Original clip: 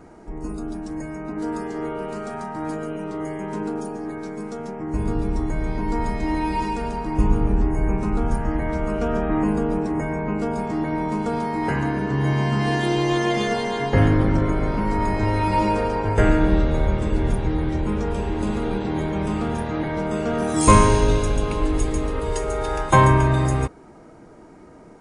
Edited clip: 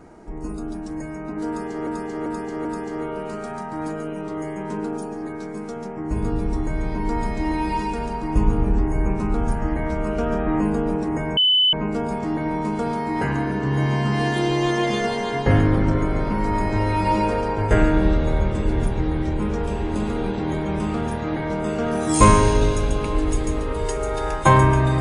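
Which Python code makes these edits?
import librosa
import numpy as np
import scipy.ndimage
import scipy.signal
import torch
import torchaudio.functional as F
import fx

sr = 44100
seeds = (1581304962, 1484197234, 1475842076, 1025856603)

y = fx.edit(x, sr, fx.repeat(start_s=1.48, length_s=0.39, count=4),
    fx.insert_tone(at_s=10.2, length_s=0.36, hz=3010.0, db=-13.5), tone=tone)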